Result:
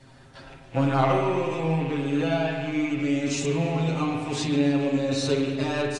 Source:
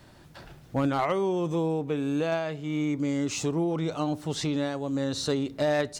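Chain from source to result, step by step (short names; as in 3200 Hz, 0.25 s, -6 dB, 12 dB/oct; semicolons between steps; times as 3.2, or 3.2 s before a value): rattling part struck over -43 dBFS, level -32 dBFS; notches 50/100/150 Hz; comb 7.5 ms, depth 94%; flange 0.36 Hz, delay 0.3 ms, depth 9.9 ms, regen -37%; on a send: feedback echo 0.14 s, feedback 58%, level -17.5 dB; on the sum: spring tank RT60 1.6 s, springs 37/49 ms, chirp 35 ms, DRR 2 dB; gain +1.5 dB; AAC 32 kbps 22050 Hz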